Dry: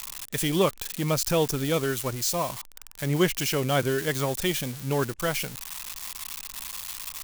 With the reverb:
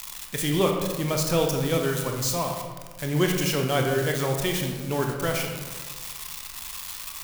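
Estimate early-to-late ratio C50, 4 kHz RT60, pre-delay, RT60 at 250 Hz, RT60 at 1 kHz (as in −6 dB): 4.0 dB, 0.80 s, 22 ms, 1.8 s, 1.4 s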